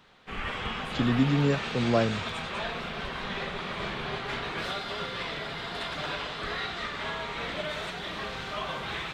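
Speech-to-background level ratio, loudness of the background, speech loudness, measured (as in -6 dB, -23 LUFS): 6.5 dB, -33.5 LUFS, -27.0 LUFS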